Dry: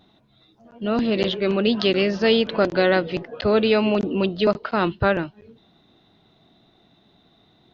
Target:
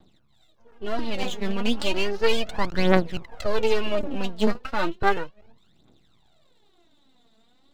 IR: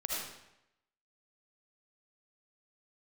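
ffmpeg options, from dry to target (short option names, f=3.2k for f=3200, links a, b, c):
-af "aeval=exprs='max(val(0),0)':c=same,aphaser=in_gain=1:out_gain=1:delay=4.6:decay=0.71:speed=0.34:type=triangular,volume=-5dB"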